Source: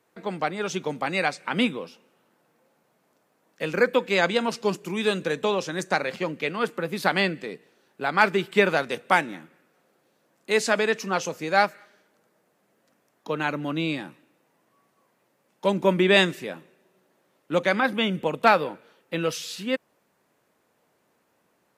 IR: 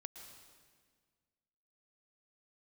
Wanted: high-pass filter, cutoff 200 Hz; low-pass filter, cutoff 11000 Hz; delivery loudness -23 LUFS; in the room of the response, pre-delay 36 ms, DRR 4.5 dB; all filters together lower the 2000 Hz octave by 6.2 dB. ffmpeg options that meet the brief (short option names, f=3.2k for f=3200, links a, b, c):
-filter_complex "[0:a]highpass=200,lowpass=11k,equalizer=f=2k:t=o:g=-8.5,asplit=2[a][b];[1:a]atrim=start_sample=2205,adelay=36[c];[b][c]afir=irnorm=-1:irlink=0,volume=0.5dB[d];[a][d]amix=inputs=2:normalize=0,volume=3dB"